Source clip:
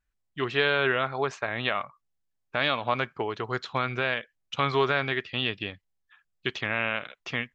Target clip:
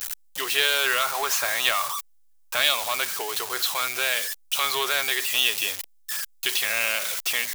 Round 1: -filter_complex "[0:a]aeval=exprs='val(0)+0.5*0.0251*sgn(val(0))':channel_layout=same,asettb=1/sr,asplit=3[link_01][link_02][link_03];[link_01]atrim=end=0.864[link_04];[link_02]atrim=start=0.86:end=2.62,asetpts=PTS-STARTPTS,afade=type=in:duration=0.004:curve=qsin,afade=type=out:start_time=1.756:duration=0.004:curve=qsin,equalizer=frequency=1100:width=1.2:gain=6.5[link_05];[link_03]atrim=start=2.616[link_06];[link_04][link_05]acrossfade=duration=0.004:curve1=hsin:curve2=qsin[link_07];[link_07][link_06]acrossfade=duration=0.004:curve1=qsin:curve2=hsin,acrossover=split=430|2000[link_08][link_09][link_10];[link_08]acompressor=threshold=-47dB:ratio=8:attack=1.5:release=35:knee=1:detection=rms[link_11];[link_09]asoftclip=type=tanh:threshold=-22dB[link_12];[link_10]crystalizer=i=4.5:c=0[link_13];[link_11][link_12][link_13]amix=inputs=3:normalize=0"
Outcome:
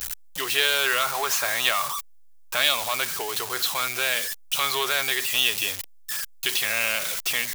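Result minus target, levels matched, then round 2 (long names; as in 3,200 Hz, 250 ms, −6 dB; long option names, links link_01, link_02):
downward compressor: peak gain reduction −9 dB
-filter_complex "[0:a]aeval=exprs='val(0)+0.5*0.0251*sgn(val(0))':channel_layout=same,asettb=1/sr,asplit=3[link_01][link_02][link_03];[link_01]atrim=end=0.864[link_04];[link_02]atrim=start=0.86:end=2.62,asetpts=PTS-STARTPTS,afade=type=in:duration=0.004:curve=qsin,afade=type=out:start_time=1.756:duration=0.004:curve=qsin,equalizer=frequency=1100:width=1.2:gain=6.5[link_05];[link_03]atrim=start=2.616[link_06];[link_04][link_05]acrossfade=duration=0.004:curve1=hsin:curve2=qsin[link_07];[link_07][link_06]acrossfade=duration=0.004:curve1=qsin:curve2=hsin,acrossover=split=430|2000[link_08][link_09][link_10];[link_08]acompressor=threshold=-57dB:ratio=8:attack=1.5:release=35:knee=1:detection=rms[link_11];[link_09]asoftclip=type=tanh:threshold=-22dB[link_12];[link_10]crystalizer=i=4.5:c=0[link_13];[link_11][link_12][link_13]amix=inputs=3:normalize=0"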